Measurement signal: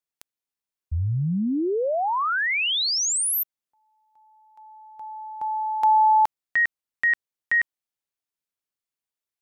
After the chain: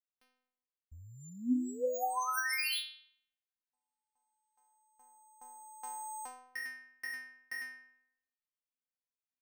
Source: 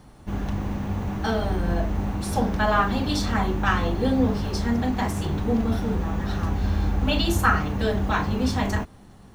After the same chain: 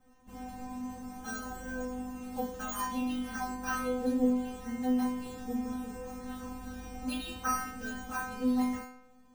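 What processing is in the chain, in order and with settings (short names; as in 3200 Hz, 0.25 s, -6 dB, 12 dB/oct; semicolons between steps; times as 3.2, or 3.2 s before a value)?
careless resampling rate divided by 6×, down filtered, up hold; metallic resonator 250 Hz, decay 0.77 s, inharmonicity 0.002; gain +7 dB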